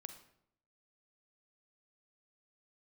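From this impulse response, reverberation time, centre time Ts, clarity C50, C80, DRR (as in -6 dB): 0.70 s, 13 ms, 8.5 dB, 12.0 dB, 7.5 dB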